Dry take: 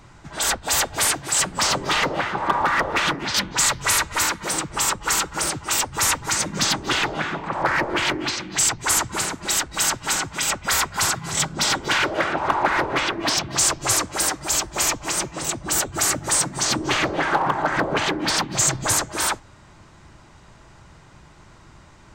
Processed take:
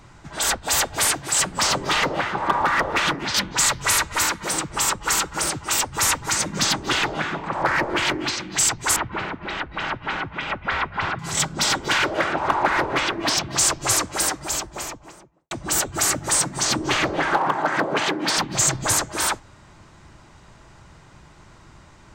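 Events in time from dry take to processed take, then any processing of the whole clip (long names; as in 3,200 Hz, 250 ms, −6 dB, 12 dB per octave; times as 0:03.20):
0:08.96–0:11.19: low-pass filter 2,900 Hz 24 dB per octave
0:14.19–0:15.51: fade out and dull
0:17.36–0:18.37: high-pass filter 170 Hz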